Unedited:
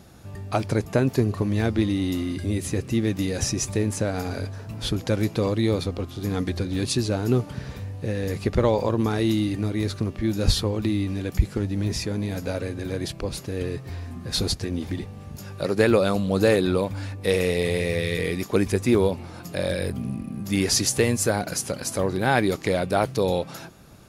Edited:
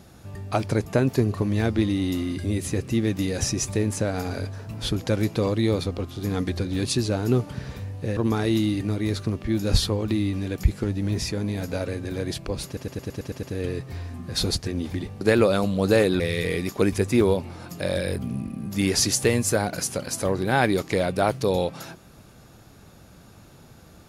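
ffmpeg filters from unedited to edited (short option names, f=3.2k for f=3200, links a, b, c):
-filter_complex "[0:a]asplit=11[a][b][c][d][e][f][g][h][i][j][k];[a]atrim=end=8.172[l];[b]atrim=start=8.908:end=13.512[m];[c]atrim=start=13.398:end=13.512[n];[d]atrim=start=13.398:end=13.512[o];[e]atrim=start=13.398:end=13.512[p];[f]atrim=start=13.398:end=13.512[q];[g]atrim=start=13.398:end=13.512[r];[h]atrim=start=13.398:end=13.512[s];[i]atrim=start=13.398:end=15.182[t];[j]atrim=start=15.728:end=16.722[u];[k]atrim=start=17.938[v];[l][m]acrossfade=d=0.004:c1=hsin:c2=hsin[w];[w][n]acrossfade=d=0.004:c1=hsin:c2=hsin[x];[x][o]acrossfade=d=0.004:c1=hsin:c2=hsin[y];[y][p]acrossfade=d=0.004:c1=hsin:c2=hsin[z];[z][q]acrossfade=d=0.004:c1=hsin:c2=hsin[aa];[aa][r]acrossfade=d=0.004:c1=hsin:c2=hsin[ab];[ab][s]acrossfade=d=0.004:c1=hsin:c2=hsin[ac];[ac][t]acrossfade=d=0.004:c1=hsin:c2=hsin[ad];[ad][u]acrossfade=d=0.004:c1=hsin:c2=hsin[ae];[ae][v]acrossfade=d=0.004:c1=hsin:c2=hsin"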